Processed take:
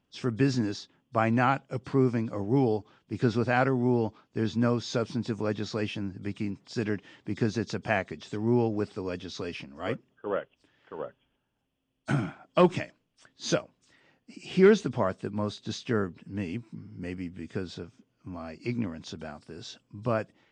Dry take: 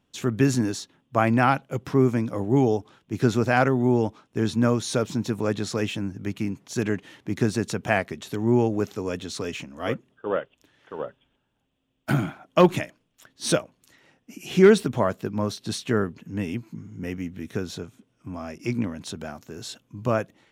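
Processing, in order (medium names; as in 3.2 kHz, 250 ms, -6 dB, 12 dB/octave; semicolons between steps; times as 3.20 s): knee-point frequency compression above 3.2 kHz 1.5:1; trim -4.5 dB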